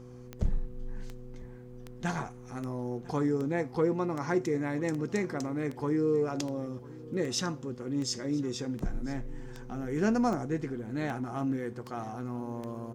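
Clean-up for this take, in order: de-click; de-hum 123.9 Hz, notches 4; inverse comb 998 ms -21 dB

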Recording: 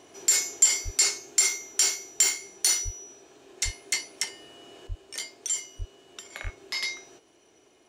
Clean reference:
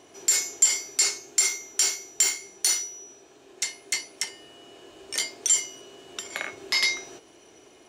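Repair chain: de-plosive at 0.84/2.84/3.64/4.88/5.78/6.43 s; gain correction +7.5 dB, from 4.87 s

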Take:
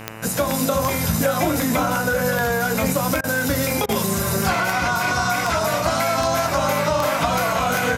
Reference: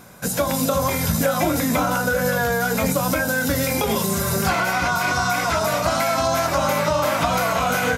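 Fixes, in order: de-click; de-hum 110.4 Hz, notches 27; interpolate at 3.21/3.86 s, 27 ms

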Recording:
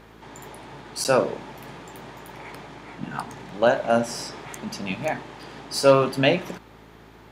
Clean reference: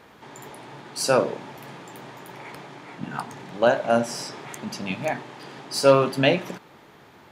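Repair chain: de-hum 54.8 Hz, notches 8; interpolate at 1.04 s, 9.4 ms

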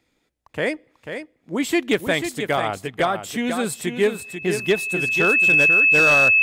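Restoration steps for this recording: clip repair -10.5 dBFS; band-stop 2.6 kHz, Q 30; inverse comb 491 ms -8 dB

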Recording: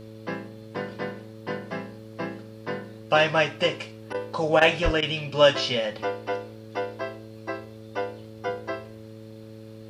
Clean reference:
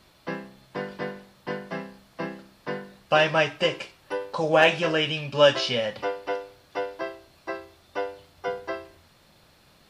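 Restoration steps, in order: de-hum 109.8 Hz, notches 5; 4.84–4.96 s: high-pass 140 Hz 24 dB/octave; interpolate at 4.13/4.60/5.01 s, 12 ms

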